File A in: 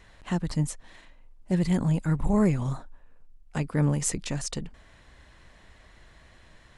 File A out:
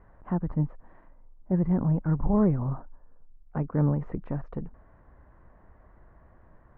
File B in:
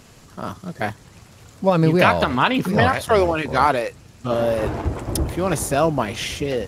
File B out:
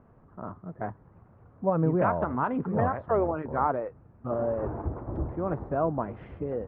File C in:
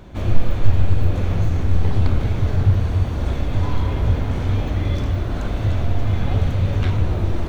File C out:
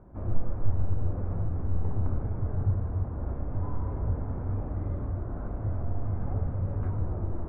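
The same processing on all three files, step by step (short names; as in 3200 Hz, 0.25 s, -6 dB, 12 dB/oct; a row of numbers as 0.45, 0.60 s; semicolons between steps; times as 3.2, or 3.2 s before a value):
LPF 1300 Hz 24 dB/oct; normalise peaks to -12 dBFS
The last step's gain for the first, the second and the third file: 0.0, -8.5, -11.0 dB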